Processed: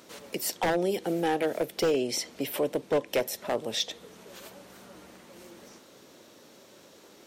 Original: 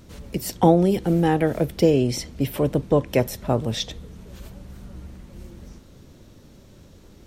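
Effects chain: HPF 430 Hz 12 dB/oct; in parallel at 0 dB: compressor, threshold -36 dBFS, peak gain reduction 20.5 dB; on the sum: wavefolder -14.5 dBFS; dynamic EQ 1200 Hz, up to -5 dB, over -39 dBFS, Q 1.3; gain -3 dB

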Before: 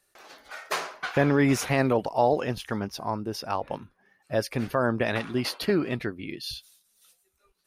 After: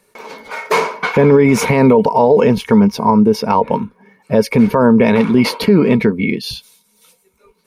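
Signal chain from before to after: small resonant body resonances 210/440/930/2200 Hz, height 18 dB, ringing for 45 ms; maximiser +10 dB; gain -1 dB

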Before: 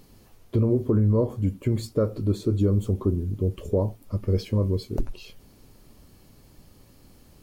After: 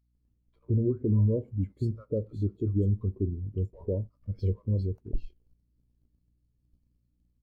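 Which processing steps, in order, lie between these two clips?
bands offset in time highs, lows 0.15 s, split 810 Hz; hum 60 Hz, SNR 23 dB; in parallel at -5 dB: sample gate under -39.5 dBFS; on the sum: spectral expander 1.5:1; gain -7 dB

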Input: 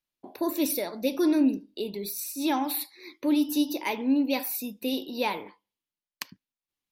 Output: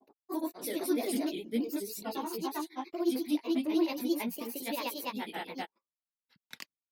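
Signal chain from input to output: chorus voices 2, 0.43 Hz, delay 22 ms, depth 2.1 ms; gate -47 dBFS, range -19 dB; grains 0.1 s, grains 28/s, spray 0.523 s, pitch spread up and down by 3 st

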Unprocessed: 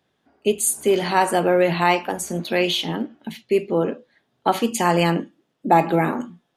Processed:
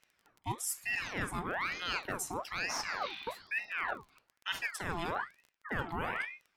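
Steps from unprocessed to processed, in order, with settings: spectral repair 2.88–3.79, 1400–5700 Hz both; reverse; compressor 6:1, threshold -29 dBFS, peak gain reduction 18 dB; reverse; crackle 28/s -41 dBFS; ring modulator with a swept carrier 1400 Hz, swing 65%, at 1.1 Hz; gain -2 dB

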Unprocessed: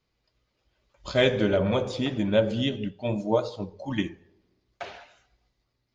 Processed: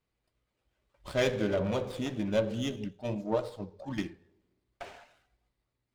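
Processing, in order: running maximum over 5 samples; gain -6 dB

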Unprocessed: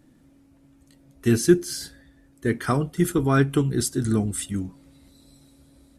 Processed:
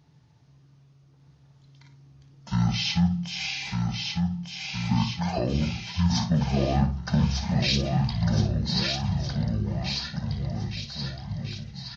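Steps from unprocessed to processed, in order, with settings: HPF 200 Hz 12 dB/oct; limiter -15 dBFS, peak gain reduction 9 dB; doubler 29 ms -10.5 dB; bouncing-ball echo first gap 0.6 s, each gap 0.85×, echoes 5; speed mistake 15 ips tape played at 7.5 ips

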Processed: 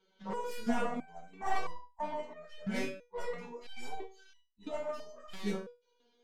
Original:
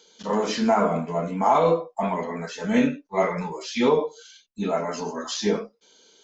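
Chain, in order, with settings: tracing distortion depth 0.26 ms; low-pass opened by the level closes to 2300 Hz, open at -19.5 dBFS; stepped resonator 3 Hz 190–970 Hz; gain +2 dB

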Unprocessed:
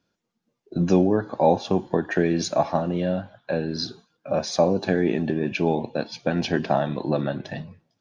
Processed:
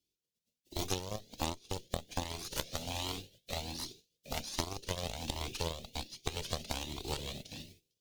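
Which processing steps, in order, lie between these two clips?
spectral contrast lowered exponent 0.38; Chebyshev band-stop 430–3200 Hz, order 2; added harmonics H 2 -10 dB, 3 -12 dB, 7 -25 dB, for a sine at -4 dBFS; compressor 20:1, threshold -37 dBFS, peak gain reduction 21 dB; cascading flanger rising 1.3 Hz; gain +11 dB

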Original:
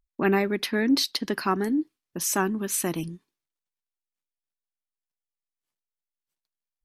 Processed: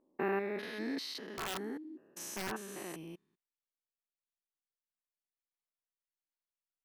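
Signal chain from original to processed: stepped spectrum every 0.2 s; tone controls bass -13 dB, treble -7 dB; 1.31–2.53 wrapped overs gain 24.5 dB; gain -6.5 dB

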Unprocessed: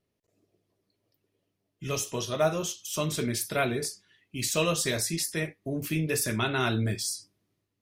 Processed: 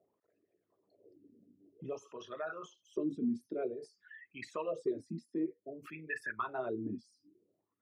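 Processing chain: formant sharpening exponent 2; wah 0.53 Hz 230–1800 Hz, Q 8; three-band squash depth 70%; gain +4.5 dB

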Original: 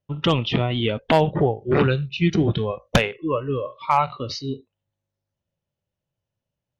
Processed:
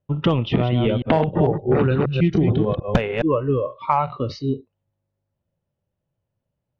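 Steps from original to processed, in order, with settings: 0.43–3.22 reverse delay 0.148 s, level -5 dB; LPF 1000 Hz 6 dB/oct; compressor 5:1, threshold -20 dBFS, peak gain reduction 7.5 dB; gain +6 dB

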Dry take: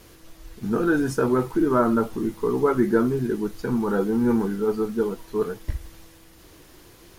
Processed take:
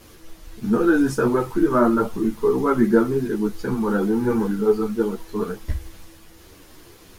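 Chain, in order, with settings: ensemble effect; gain +5.5 dB

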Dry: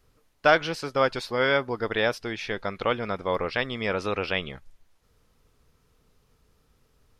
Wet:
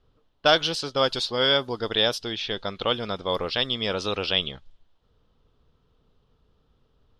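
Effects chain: low-pass opened by the level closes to 1800 Hz, open at -21 dBFS; resonant high shelf 2700 Hz +6.5 dB, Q 3

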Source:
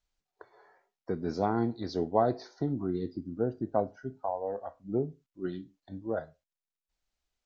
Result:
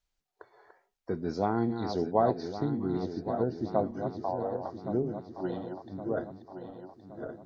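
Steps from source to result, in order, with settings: regenerating reverse delay 0.559 s, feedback 69%, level -8 dB

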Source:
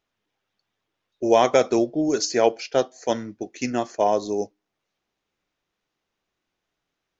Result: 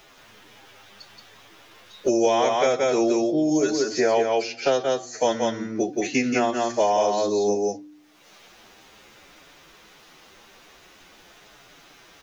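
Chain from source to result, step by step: low shelf 450 Hz -4.5 dB; notches 60/120/180/240/300/360 Hz; time stretch by phase-locked vocoder 1.7×; echo 0.176 s -3.5 dB; three-band squash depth 100%

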